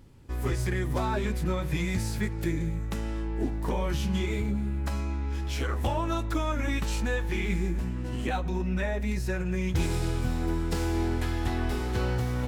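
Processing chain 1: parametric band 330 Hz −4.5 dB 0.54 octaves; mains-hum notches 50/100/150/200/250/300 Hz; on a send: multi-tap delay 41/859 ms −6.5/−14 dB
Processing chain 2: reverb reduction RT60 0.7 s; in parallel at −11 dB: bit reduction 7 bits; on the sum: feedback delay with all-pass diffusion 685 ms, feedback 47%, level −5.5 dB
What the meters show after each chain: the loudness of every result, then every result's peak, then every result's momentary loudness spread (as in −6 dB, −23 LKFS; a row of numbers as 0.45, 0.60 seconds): −30.5, −29.0 LKFS; −16.5, −13.5 dBFS; 4, 4 LU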